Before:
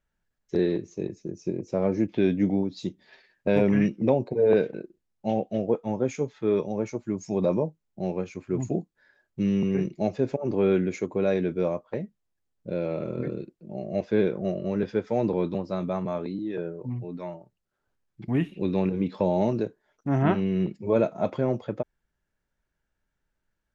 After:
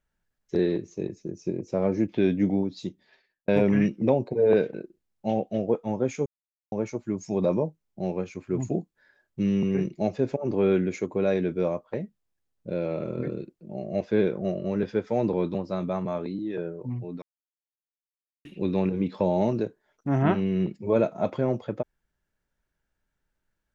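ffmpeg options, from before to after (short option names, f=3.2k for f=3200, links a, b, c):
-filter_complex "[0:a]asplit=6[a][b][c][d][e][f];[a]atrim=end=3.48,asetpts=PTS-STARTPTS,afade=t=out:st=2.7:d=0.78[g];[b]atrim=start=3.48:end=6.26,asetpts=PTS-STARTPTS,afade=t=in:d=0.004:c=hsin,afade=t=out:st=2.776:d=0.004:c=hsin[h];[c]atrim=start=6.26:end=6.72,asetpts=PTS-STARTPTS,volume=0[i];[d]atrim=start=6.72:end=17.22,asetpts=PTS-STARTPTS,afade=t=in:d=0.004:c=hsin,afade=t=out:st=10.496:d=0.004:c=hsin[j];[e]atrim=start=17.22:end=18.45,asetpts=PTS-STARTPTS,volume=0[k];[f]atrim=start=18.45,asetpts=PTS-STARTPTS,afade=t=in:d=0.004:c=hsin[l];[g][h][i][j][k][l]concat=n=6:v=0:a=1"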